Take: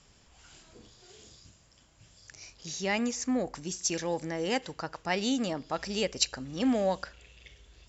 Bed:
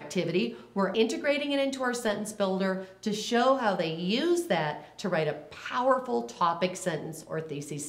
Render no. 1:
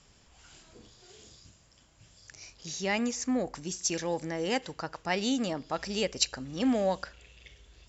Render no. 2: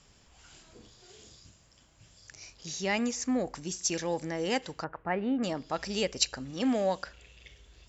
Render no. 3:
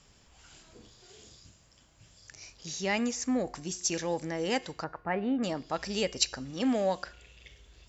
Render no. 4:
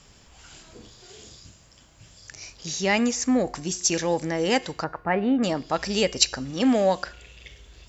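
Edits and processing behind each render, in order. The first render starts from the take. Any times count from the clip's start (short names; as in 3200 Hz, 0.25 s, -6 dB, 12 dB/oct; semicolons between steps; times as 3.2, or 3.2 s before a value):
nothing audible
4.84–5.43 LPF 1900 Hz 24 dB/oct; 6.51–7.06 low shelf 97 Hz -10 dB
de-hum 358.4 Hz, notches 38
gain +7.5 dB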